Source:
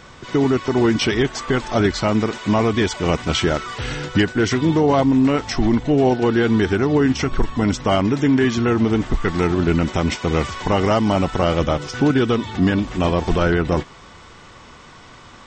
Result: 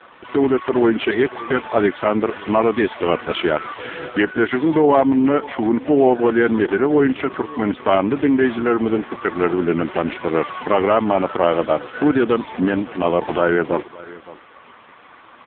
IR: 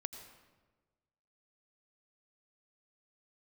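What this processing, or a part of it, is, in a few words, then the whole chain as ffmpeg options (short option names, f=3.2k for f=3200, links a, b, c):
satellite phone: -filter_complex "[0:a]asettb=1/sr,asplit=3[a][b][c];[a]atrim=end=8.524[d];[b]atrim=start=8.52:end=9.37,asetpts=PTS-STARTPTS,afade=t=in:d=0.004:c=qsin,afade=t=out:st=0.846:d=0.004:c=qsin,equalizer=f=62:w=0.41:g=-4[e];[c]atrim=start=9.366[f];[d][e]acrossfade=d=0.004:c1=hsin:c2=qsin[g];[g][f]acrossfade=d=0.004:c1=qsin:c2=hsin,highpass=310,lowpass=3.1k,aecho=1:1:566:0.106,volume=4.5dB" -ar 8000 -c:a libopencore_amrnb -b:a 5150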